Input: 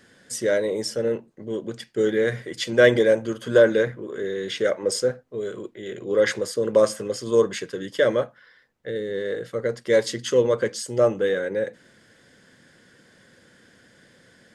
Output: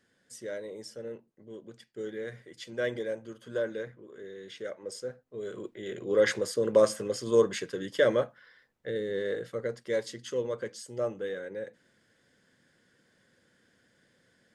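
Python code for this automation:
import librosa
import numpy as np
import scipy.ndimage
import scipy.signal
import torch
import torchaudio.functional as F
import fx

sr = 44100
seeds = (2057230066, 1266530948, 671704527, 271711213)

y = fx.gain(x, sr, db=fx.line((5.0, -16.0), (5.67, -4.0), (9.3, -4.0), (10.08, -12.5)))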